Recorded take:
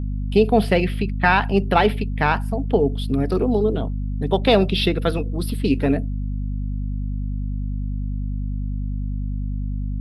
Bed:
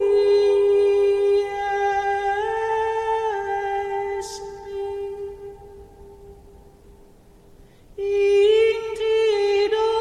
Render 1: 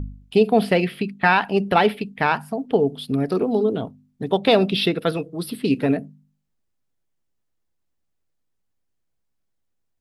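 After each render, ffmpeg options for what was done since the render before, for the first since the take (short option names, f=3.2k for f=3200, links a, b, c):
-af "bandreject=f=50:t=h:w=4,bandreject=f=100:t=h:w=4,bandreject=f=150:t=h:w=4,bandreject=f=200:t=h:w=4,bandreject=f=250:t=h:w=4"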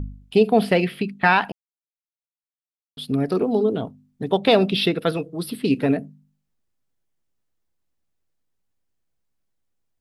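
-filter_complex "[0:a]asplit=3[a][b][c];[a]atrim=end=1.52,asetpts=PTS-STARTPTS,afade=t=out:st=1.516:d=0.004:c=hsin[d];[b]atrim=start=1.52:end=2.97,asetpts=PTS-STARTPTS,volume=0[e];[c]atrim=start=2.97,asetpts=PTS-STARTPTS,afade=t=in:d=0.004:c=hsin[f];[d][e][f]concat=n=3:v=0:a=1"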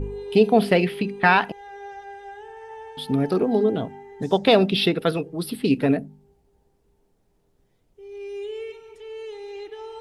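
-filter_complex "[1:a]volume=-17dB[a];[0:a][a]amix=inputs=2:normalize=0"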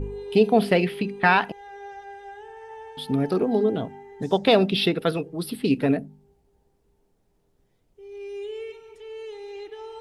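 -af "volume=-1.5dB"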